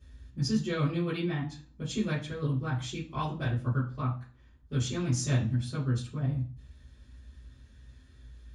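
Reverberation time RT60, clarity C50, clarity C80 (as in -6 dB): 0.40 s, 7.5 dB, 13.5 dB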